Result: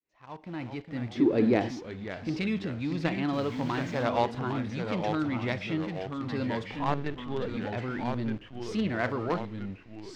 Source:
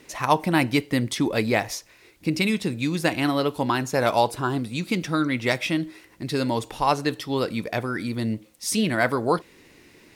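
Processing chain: opening faded in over 1.80 s; 6.76–7.57 LPC vocoder at 8 kHz pitch kept; in parallel at -11 dB: companded quantiser 2-bit; on the sum: transient shaper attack -2 dB, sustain +2 dB; echoes that change speed 0.354 s, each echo -2 st, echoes 2, each echo -6 dB; 3.32–4.03 added noise white -33 dBFS; air absorption 190 m; harmonic-percussive split percussive -4 dB; 1.15–1.69 bell 340 Hz +14 dB 1.4 oct; gain -7 dB

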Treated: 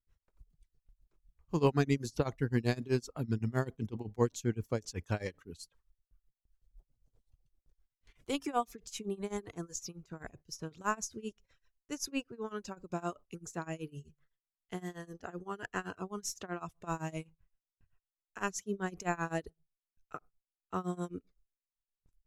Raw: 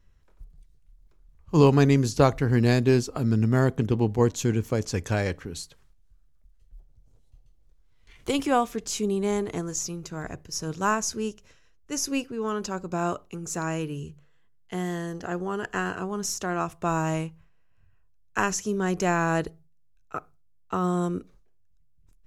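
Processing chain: gate with hold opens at -52 dBFS; reverb removal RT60 0.65 s; tremolo 7.8 Hz, depth 93%; gain -6 dB

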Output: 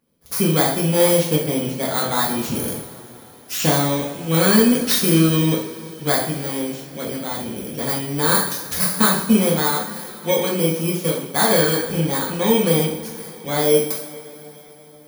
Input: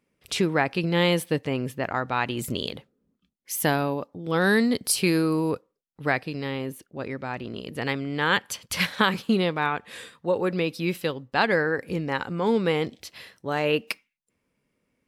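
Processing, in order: FFT order left unsorted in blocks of 16 samples; two-slope reverb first 0.56 s, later 4.5 s, from -21 dB, DRR -4.5 dB

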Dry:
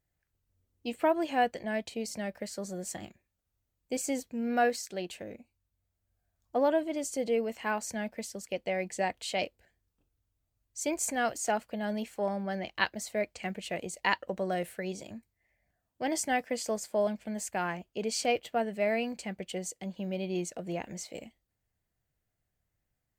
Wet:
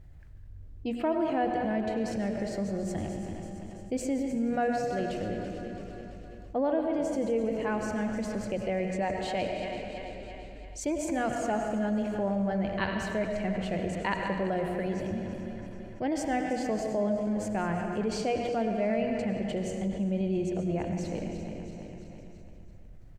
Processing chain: regenerating reverse delay 0.167 s, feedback 63%, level -10.5 dB; RIAA curve playback; notches 60/120/180/240 Hz; frequency-shifting echo 0.4 s, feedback 40%, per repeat -100 Hz, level -22 dB; digital reverb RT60 1.3 s, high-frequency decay 0.9×, pre-delay 60 ms, DRR 6.5 dB; fast leveller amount 50%; gain -5 dB

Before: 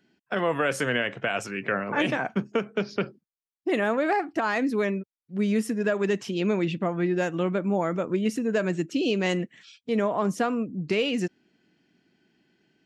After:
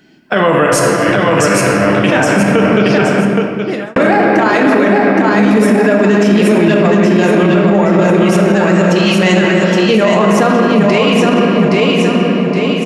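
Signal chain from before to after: 0.66–2.04 negative-ratio compressor -34 dBFS, ratio -0.5; 8.22–9.16 steep high-pass 1000 Hz 48 dB/oct; feedback echo 0.819 s, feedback 38%, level -3.5 dB; shoebox room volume 220 m³, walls hard, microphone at 0.5 m; 2.88–3.96 fade out linear; maximiser +19 dB; gain -1 dB

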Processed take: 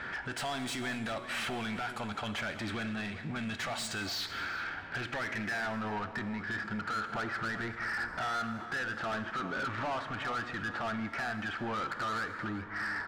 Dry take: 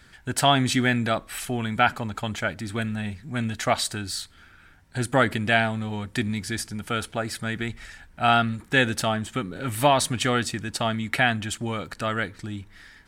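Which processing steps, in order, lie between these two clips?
low-pass opened by the level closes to 1600 Hz, open at -18.5 dBFS; harmonic-percussive split percussive -4 dB; compressor 10:1, threshold -43 dBFS, peak gain reduction 27 dB; limiter -39 dBFS, peak gain reduction 10.5 dB; low-pass sweep 11000 Hz -> 1400 Hz, 3.49–5.78; overdrive pedal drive 32 dB, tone 4400 Hz, clips at -23.5 dBFS; outdoor echo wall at 66 m, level -12 dB; non-linear reverb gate 0.27 s flat, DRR 11.5 dB; gain -3 dB

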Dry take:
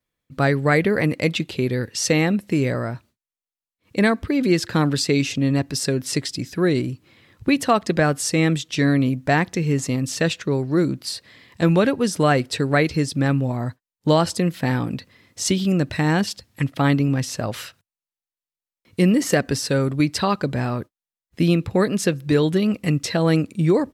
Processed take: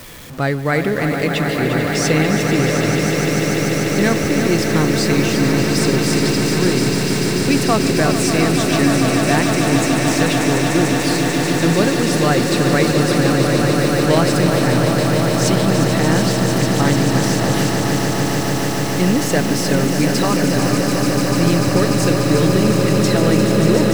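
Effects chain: zero-crossing step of -29 dBFS; swelling echo 0.147 s, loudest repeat 8, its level -8.5 dB; lo-fi delay 0.351 s, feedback 80%, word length 6-bit, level -8 dB; gain -1 dB

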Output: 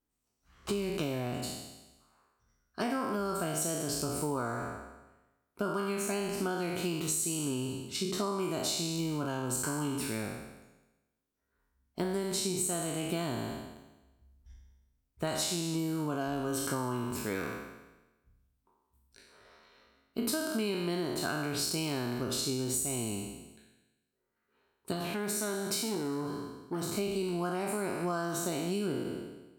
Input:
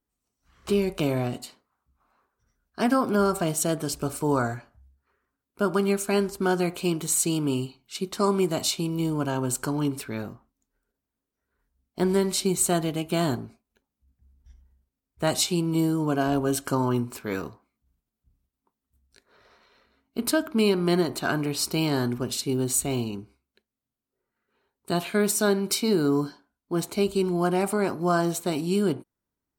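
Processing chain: spectral trails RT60 1.08 s; compressor, threshold -26 dBFS, peak gain reduction 10.5 dB; 24.92–26.93 core saturation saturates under 860 Hz; gain -3.5 dB

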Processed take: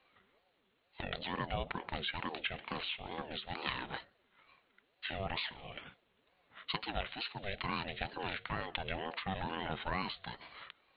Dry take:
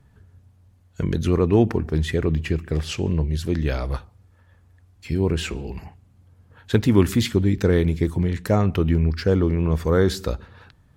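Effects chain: differentiator; compressor 8:1, threshold -44 dBFS, peak gain reduction 16 dB; downsampling 8000 Hz; ring modulator with a swept carrier 470 Hz, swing 40%, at 2.2 Hz; gain +15 dB

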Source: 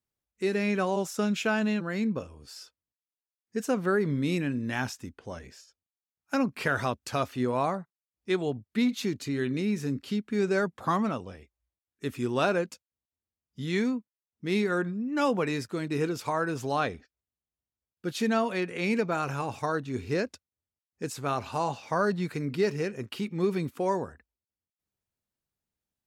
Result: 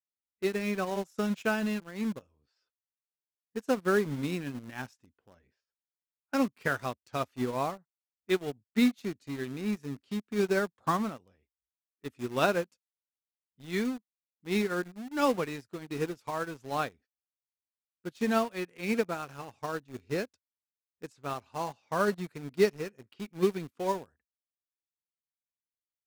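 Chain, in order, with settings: low-pass opened by the level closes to 1700 Hz, open at -28 dBFS; in parallel at -6.5 dB: bit-crush 5-bit; on the sum: upward expander 2.5:1, over -33 dBFS

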